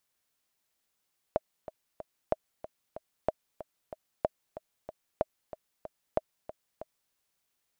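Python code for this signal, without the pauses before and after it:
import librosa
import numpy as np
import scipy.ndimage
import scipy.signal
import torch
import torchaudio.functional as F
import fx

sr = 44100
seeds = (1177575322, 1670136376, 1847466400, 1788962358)

y = fx.click_track(sr, bpm=187, beats=3, bars=6, hz=629.0, accent_db=14.5, level_db=-12.5)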